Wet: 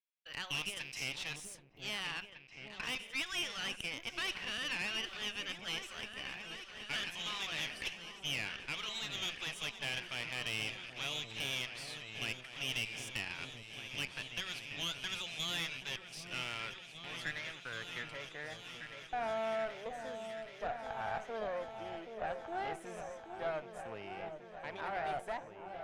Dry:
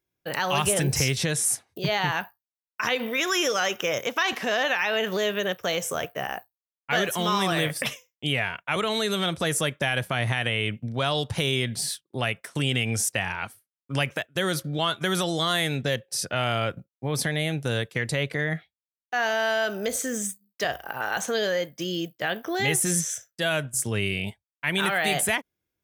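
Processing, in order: rattle on loud lows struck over -32 dBFS, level -27 dBFS; band-pass sweep 2.8 kHz -> 790 Hz, 16.13–18.92 s; valve stage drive 28 dB, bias 0.75; on a send: delay with an opening low-pass 777 ms, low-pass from 750 Hz, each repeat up 2 oct, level -6 dB; on the sum: trim -2.5 dB

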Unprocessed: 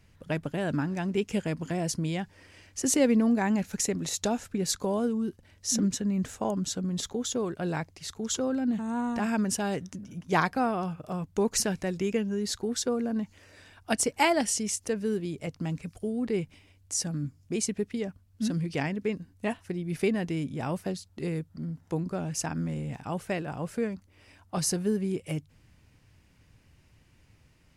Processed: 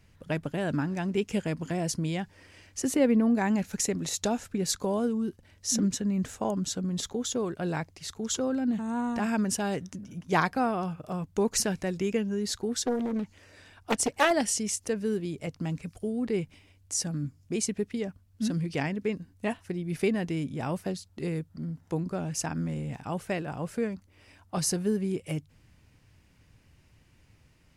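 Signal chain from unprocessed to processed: 2.86–3.35 s: peaking EQ 6.3 kHz -10.5 dB 1.6 oct; 12.82–14.31 s: loudspeaker Doppler distortion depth 0.56 ms

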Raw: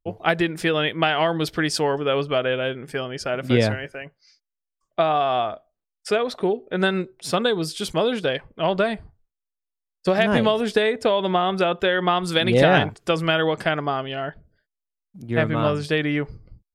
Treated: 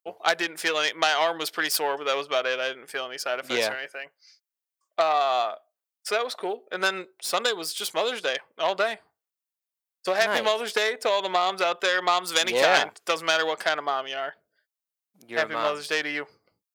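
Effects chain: self-modulated delay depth 0.13 ms; high-pass 640 Hz 12 dB/octave; treble shelf 10 kHz +8.5 dB; short-mantissa float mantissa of 6-bit

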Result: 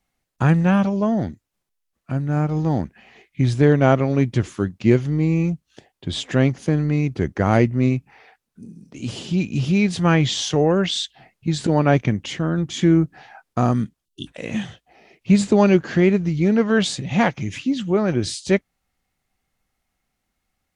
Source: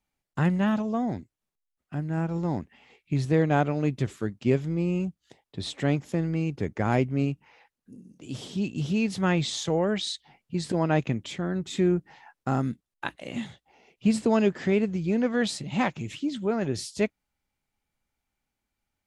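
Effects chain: speed mistake 48 kHz file played as 44.1 kHz; spectral selection erased 14.05–14.28 s, 390–2700 Hz; trim +7.5 dB

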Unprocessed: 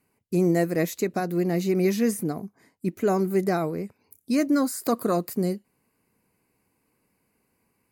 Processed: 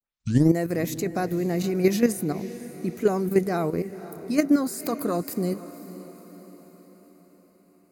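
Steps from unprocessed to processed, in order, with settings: tape start-up on the opening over 0.51 s; level held to a coarse grid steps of 10 dB; echo that smears into a reverb 521 ms, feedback 53%, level -15 dB; trim +5 dB

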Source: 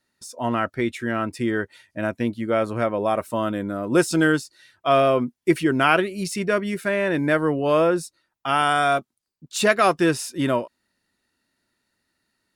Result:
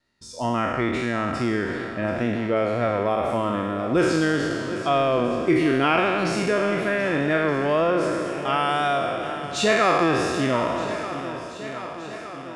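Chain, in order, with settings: spectral sustain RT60 1.61 s; low-pass 5.6 kHz 12 dB/octave; bass shelf 67 Hz +9.5 dB; band-stop 1.5 kHz, Q 14; on a send: shuffle delay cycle 1220 ms, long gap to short 1.5:1, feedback 52%, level -15 dB; on the sum: wow and flutter 26 cents; in parallel at +2.5 dB: compression, threshold -21 dBFS, peak gain reduction 11 dB; on the sum: trim -8 dB

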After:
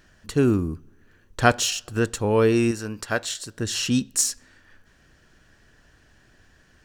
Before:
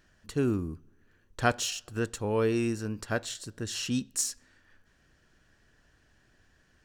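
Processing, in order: 2.71–3.59 s: bass shelf 430 Hz -8 dB; trim +8 dB

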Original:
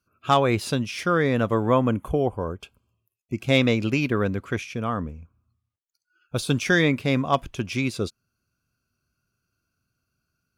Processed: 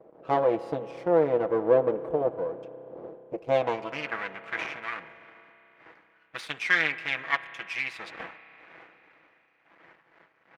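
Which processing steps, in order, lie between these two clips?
wind noise 420 Hz -38 dBFS; comb 6.1 ms, depth 53%; half-wave rectifier; band-pass sweep 520 Hz -> 2 kHz, 3.44–4.22 s; spring tank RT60 3.9 s, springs 31 ms, chirp 40 ms, DRR 14 dB; trim +6.5 dB

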